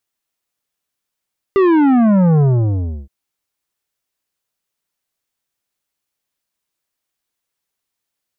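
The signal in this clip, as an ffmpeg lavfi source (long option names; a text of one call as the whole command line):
ffmpeg -f lavfi -i "aevalsrc='0.316*clip((1.52-t)/0.67,0,1)*tanh(3.55*sin(2*PI*400*1.52/log(65/400)*(exp(log(65/400)*t/1.52)-1)))/tanh(3.55)':duration=1.52:sample_rate=44100" out.wav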